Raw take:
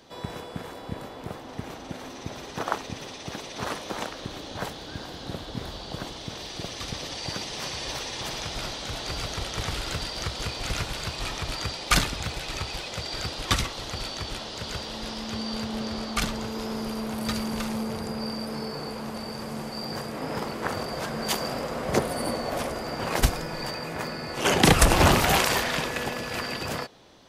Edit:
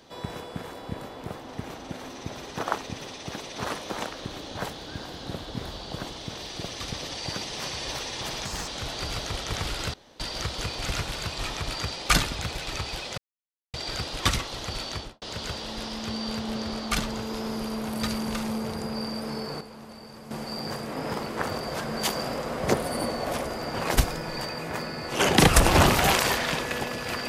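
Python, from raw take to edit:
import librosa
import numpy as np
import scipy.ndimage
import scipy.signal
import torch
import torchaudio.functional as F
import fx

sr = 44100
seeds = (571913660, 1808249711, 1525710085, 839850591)

y = fx.studio_fade_out(x, sr, start_s=14.2, length_s=0.27)
y = fx.edit(y, sr, fx.speed_span(start_s=8.45, length_s=0.3, speed=1.32),
    fx.insert_room_tone(at_s=10.01, length_s=0.26),
    fx.insert_silence(at_s=12.99, length_s=0.56),
    fx.clip_gain(start_s=18.86, length_s=0.7, db=-9.5), tone=tone)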